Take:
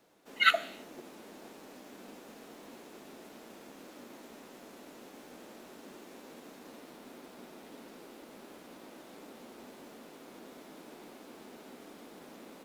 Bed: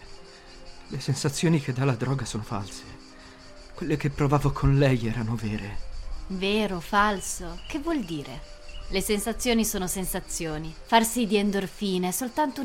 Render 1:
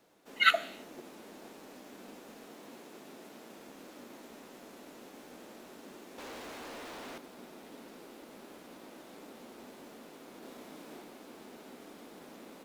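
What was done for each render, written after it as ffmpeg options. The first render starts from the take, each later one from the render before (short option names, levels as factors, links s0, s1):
-filter_complex "[0:a]asettb=1/sr,asplit=3[s0][s1][s2];[s0]atrim=end=2.464[s3];[s1]atrim=start=2.46:end=3.57,asetpts=PTS-STARTPTS,afade=t=in:d=0.004:c=qsin,afade=t=out:st=1.106:d=0.004:c=qsin,highpass=87[s4];[s2]atrim=start=3.566[s5];[s3][s4]acrossfade=d=0.004:c1=hsin:c2=qsin[s6];[s6][s5]acrossfade=d=0.004:c1=qsin:c2=hsin,asettb=1/sr,asplit=3[s7][s8][s9];[s7]atrim=end=6.184[s10];[s8]atrim=start=6.18:end=7.18,asetpts=PTS-STARTPTS,afade=t=in:d=0.004:c=qsin,afade=t=out:st=0.996:d=0.004:c=qsin,asplit=2[s11][s12];[s12]highpass=f=720:p=1,volume=35.5,asoftclip=type=tanh:threshold=0.0126[s13];[s11][s13]amix=inputs=2:normalize=0,lowpass=f=3600:p=1,volume=0.501[s14];[s9]atrim=start=7.176[s15];[s10][s14]acrossfade=d=0.004:c1=hsin:c2=qsin[s16];[s16][s15]acrossfade=d=0.004:c1=qsin:c2=hsin,asettb=1/sr,asplit=3[s17][s18][s19];[s17]atrim=end=10.394[s20];[s18]atrim=start=10.39:end=11.02,asetpts=PTS-STARTPTS,afade=t=in:d=0.004:c=qsin,afade=t=out:st=0.626:d=0.004:c=qsin,asplit=2[s21][s22];[s22]adelay=32,volume=0.708[s23];[s21][s23]amix=inputs=2:normalize=0,atrim=end_sample=27783[s24];[s19]atrim=start=11.016[s25];[s20][s24]acrossfade=d=0.004:c1=hsin:c2=qsin[s26];[s26][s25]acrossfade=d=0.004:c1=qsin:c2=hsin"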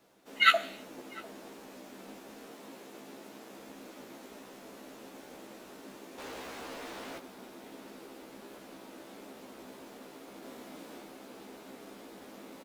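-filter_complex "[0:a]asplit=2[s0][s1];[s1]adelay=15,volume=0.708[s2];[s0][s2]amix=inputs=2:normalize=0,asplit=2[s3][s4];[s4]adelay=699.7,volume=0.0794,highshelf=f=4000:g=-15.7[s5];[s3][s5]amix=inputs=2:normalize=0"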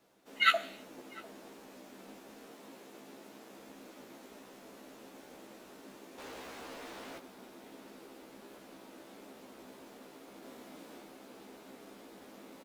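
-af "volume=0.668"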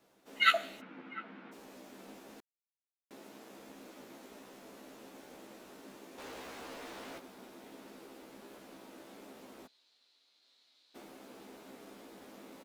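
-filter_complex "[0:a]asplit=3[s0][s1][s2];[s0]afade=t=out:st=0.8:d=0.02[s3];[s1]highpass=f=160:w=0.5412,highpass=f=160:w=1.3066,equalizer=f=170:t=q:w=4:g=9,equalizer=f=240:t=q:w=4:g=4,equalizer=f=400:t=q:w=4:g=-6,equalizer=f=620:t=q:w=4:g=-8,equalizer=f=1400:t=q:w=4:g=8,equalizer=f=2200:t=q:w=4:g=5,lowpass=f=3200:w=0.5412,lowpass=f=3200:w=1.3066,afade=t=in:st=0.8:d=0.02,afade=t=out:st=1.51:d=0.02[s4];[s2]afade=t=in:st=1.51:d=0.02[s5];[s3][s4][s5]amix=inputs=3:normalize=0,asettb=1/sr,asplit=3[s6][s7][s8];[s6]atrim=end=2.404[s9];[s7]atrim=start=2.4:end=3.11,asetpts=PTS-STARTPTS,afade=t=in:d=0.004:c=qsin,afade=t=out:st=0.706:d=0.004:c=qsin,acrusher=bits=2:mix=0:aa=0.5[s10];[s8]atrim=start=3.106[s11];[s9][s10]acrossfade=d=0.004:c1=hsin:c2=qsin[s12];[s12][s11]acrossfade=d=0.004:c1=qsin:c2=hsin,asplit=3[s13][s14][s15];[s13]afade=t=out:st=9.66:d=0.02[s16];[s14]bandpass=f=4100:t=q:w=5.4,afade=t=in:st=9.66:d=0.02,afade=t=out:st=10.94:d=0.02[s17];[s15]afade=t=in:st=10.94:d=0.02[s18];[s16][s17][s18]amix=inputs=3:normalize=0"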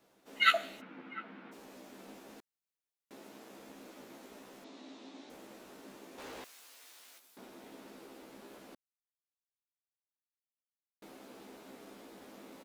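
-filter_complex "[0:a]asettb=1/sr,asplit=3[s0][s1][s2];[s0]atrim=end=4.644[s3];[s1]atrim=start=4.64:end=5.3,asetpts=PTS-STARTPTS,afade=t=in:d=0.004:c=qsin,afade=t=out:st=0.656:d=0.004:c=qsin,highpass=230,equalizer=f=270:t=q:w=4:g=8,equalizer=f=490:t=q:w=4:g=-5,equalizer=f=1500:t=q:w=4:g=-5,equalizer=f=3800:t=q:w=4:g=8,lowpass=f=6600:w=0.5412,lowpass=f=6600:w=1.3066[s4];[s2]atrim=start=5.296[s5];[s3][s4]acrossfade=d=0.004:c1=hsin:c2=qsin[s6];[s6][s5]acrossfade=d=0.004:c1=qsin:c2=hsin,asettb=1/sr,asplit=3[s7][s8][s9];[s7]atrim=end=6.444[s10];[s8]atrim=start=6.44:end=7.37,asetpts=PTS-STARTPTS,afade=t=in:d=0.004:c=qsin,afade=t=out:st=0.926:d=0.004:c=qsin,aderivative[s11];[s9]atrim=start=7.366[s12];[s10][s11]acrossfade=d=0.004:c1=hsin:c2=qsin[s13];[s13][s12]acrossfade=d=0.004:c1=qsin:c2=hsin,asplit=3[s14][s15][s16];[s14]atrim=end=8.75,asetpts=PTS-STARTPTS,afade=t=out:st=8.746:d=0.004:c=hsin[s17];[s15]atrim=start=8.75:end=11.02,asetpts=PTS-STARTPTS,volume=0[s18];[s16]atrim=start=11.02,asetpts=PTS-STARTPTS,afade=t=in:d=0.004:c=hsin[s19];[s17][s18][s19]concat=n=3:v=0:a=1"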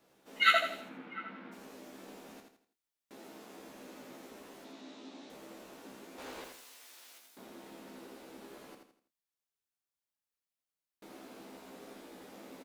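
-filter_complex "[0:a]asplit=2[s0][s1];[s1]adelay=27,volume=0.282[s2];[s0][s2]amix=inputs=2:normalize=0,aecho=1:1:82|164|246|328:0.531|0.191|0.0688|0.0248"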